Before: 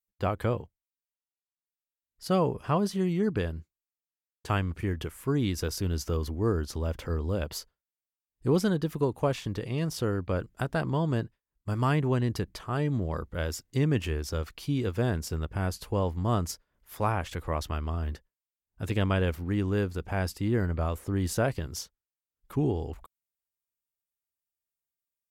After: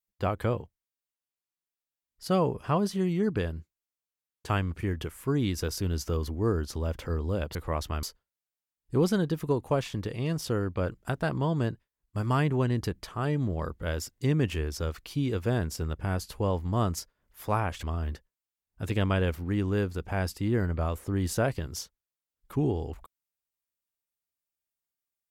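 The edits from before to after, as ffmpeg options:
-filter_complex "[0:a]asplit=4[a][b][c][d];[a]atrim=end=7.552[e];[b]atrim=start=17.348:end=17.832[f];[c]atrim=start=7.548:end=17.352[g];[d]atrim=start=17.828[h];[e][f]acrossfade=d=0.004:c1=hsin:c2=hsin[i];[i][g]acrossfade=d=0.004:c1=hsin:c2=hsin[j];[j][h]acrossfade=d=0.004:c1=hsin:c2=hsin"

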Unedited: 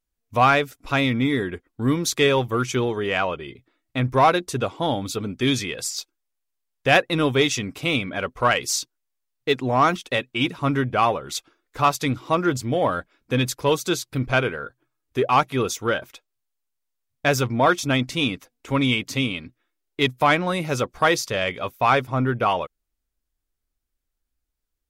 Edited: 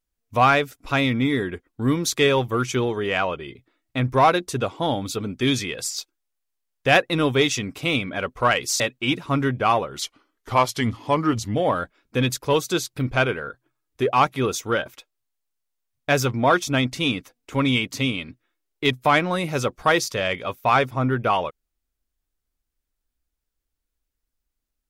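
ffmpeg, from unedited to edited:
-filter_complex "[0:a]asplit=4[a][b][c][d];[a]atrim=end=8.802[e];[b]atrim=start=10.128:end=11.354[f];[c]atrim=start=11.35:end=12.71,asetpts=PTS-STARTPTS,asetrate=39249,aresample=44100[g];[d]atrim=start=12.706[h];[e][f]acrossfade=d=0.004:c1=hsin:c2=hsin[i];[i][g]acrossfade=d=0.004:c1=hsin:c2=hsin[j];[j][h]acrossfade=d=0.004:c1=hsin:c2=hsin"

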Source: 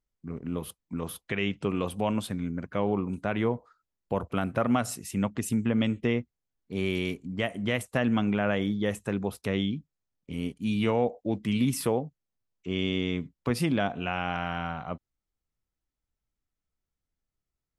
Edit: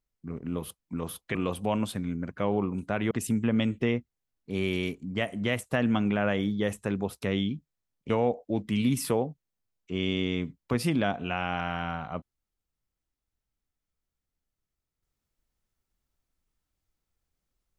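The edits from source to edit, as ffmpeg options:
-filter_complex "[0:a]asplit=4[a][b][c][d];[a]atrim=end=1.352[e];[b]atrim=start=1.698:end=3.462[f];[c]atrim=start=5.328:end=10.322[g];[d]atrim=start=10.858[h];[e][f]acrossfade=d=0.004:c1=hsin:c2=hsin[i];[i][g]acrossfade=d=0.004:c1=hsin:c2=hsin[j];[j][h]acrossfade=d=0.004:c1=hsin:c2=hsin"

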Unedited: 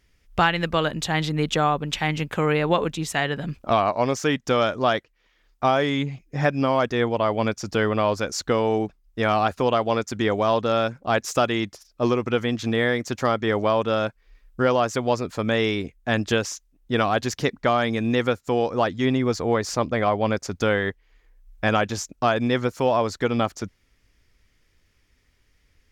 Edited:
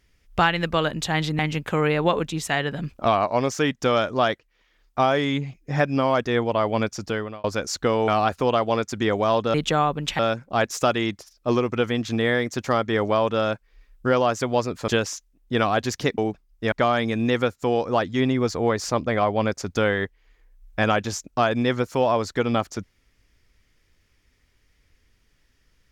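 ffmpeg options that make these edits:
-filter_complex "[0:a]asplit=9[a][b][c][d][e][f][g][h][i];[a]atrim=end=1.392[j];[b]atrim=start=2.038:end=8.09,asetpts=PTS-STARTPTS,afade=t=out:st=5.552:d=0.5[k];[c]atrim=start=8.09:end=8.732,asetpts=PTS-STARTPTS,afade=t=in:d=0.004:c=hsin[l];[d]atrim=start=9.268:end=10.732[m];[e]atrim=start=1.388:end=2.042[n];[f]atrim=start=10.728:end=15.422[o];[g]atrim=start=16.268:end=17.572[p];[h]atrim=start=8.728:end=9.272[q];[i]atrim=start=17.568[r];[k][l]concat=n=2:v=0:a=1[s];[j][s]acrossfade=d=0.004:c1=hsin:c2=hsin[t];[t][m]acrossfade=d=0.004:c1=hsin:c2=hsin[u];[u][n]acrossfade=d=0.004:c1=hsin:c2=hsin[v];[v][o]acrossfade=d=0.004:c1=hsin:c2=hsin[w];[w][p]acrossfade=d=0.004:c1=hsin:c2=hsin[x];[x][q]acrossfade=d=0.004:c1=hsin:c2=hsin[y];[y][r]acrossfade=d=0.004:c1=hsin:c2=hsin"

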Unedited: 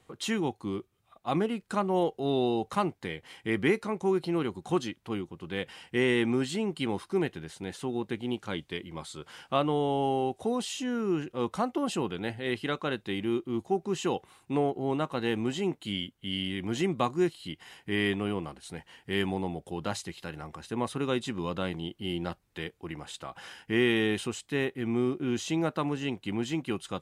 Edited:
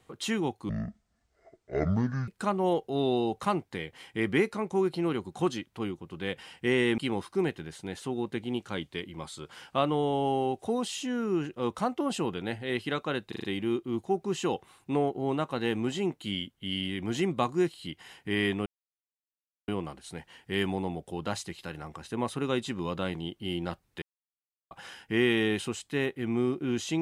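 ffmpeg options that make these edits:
-filter_complex "[0:a]asplit=11[a][b][c][d][e][f][g][h][i][j][k];[a]atrim=end=0.694[l];[b]atrim=start=0.69:end=1.58,asetpts=PTS-STARTPTS,asetrate=24696,aresample=44100[m];[c]atrim=start=1.576:end=6.282[n];[d]atrim=start=6.748:end=13.092[o];[e]atrim=start=13.048:end=13.092[p];[f]atrim=start=13.048:end=13.092[q];[g]atrim=start=13.048:end=13.092[r];[h]atrim=start=13.048:end=18.27,asetpts=PTS-STARTPTS,afade=t=out:st=5.218:d=0.004:c=hsin,apad=pad_dur=1.02[s];[i]atrim=start=18.27:end=22.61,asetpts=PTS-STARTPTS,afade=t=in:d=0.004:c=hsin,afade=t=out:st=4.336:d=0.004:c=hsin[t];[j]atrim=start=22.61:end=23.3,asetpts=PTS-STARTPTS,volume=0[u];[k]atrim=start=23.3,asetpts=PTS-STARTPTS,afade=t=in:d=0.004:c=hsin[v];[l][m]acrossfade=d=0.004:c1=hsin:c2=hsin[w];[w][n]acrossfade=d=0.004:c1=hsin:c2=hsin[x];[x][o]acrossfade=d=0.004:c1=hsin:c2=hsin[y];[y][p]acrossfade=d=0.004:c1=hsin:c2=hsin[z];[z][q]acrossfade=d=0.004:c1=hsin:c2=hsin[aa];[aa][r]acrossfade=d=0.004:c1=hsin:c2=hsin[ab];[s][t][u][v]concat=n=4:v=0:a=1[ac];[ab][ac]acrossfade=d=0.004:c1=hsin:c2=hsin"

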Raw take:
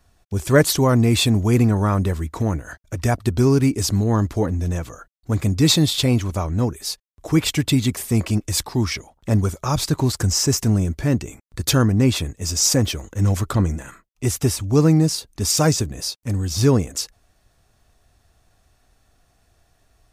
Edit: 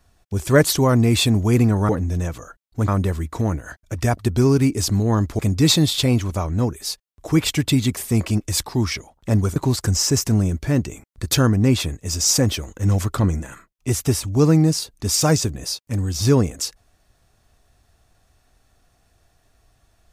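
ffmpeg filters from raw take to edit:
-filter_complex "[0:a]asplit=5[a][b][c][d][e];[a]atrim=end=1.892[f];[b]atrim=start=4.398:end=5.392[g];[c]atrim=start=1.888:end=4.402[h];[d]atrim=start=5.388:end=9.562[i];[e]atrim=start=9.918[j];[f][g]acrossfade=d=0.004:c1=hsin:c2=hsin[k];[k][h]acrossfade=d=0.004:c1=hsin:c2=hsin[l];[l][i]acrossfade=d=0.004:c1=hsin:c2=hsin[m];[m][j]acrossfade=d=0.004:c1=hsin:c2=hsin"

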